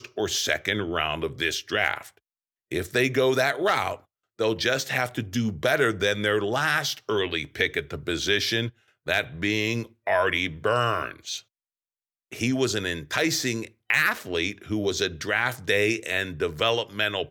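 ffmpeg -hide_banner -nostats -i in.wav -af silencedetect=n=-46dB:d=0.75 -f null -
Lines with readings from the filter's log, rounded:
silence_start: 11.41
silence_end: 12.32 | silence_duration: 0.90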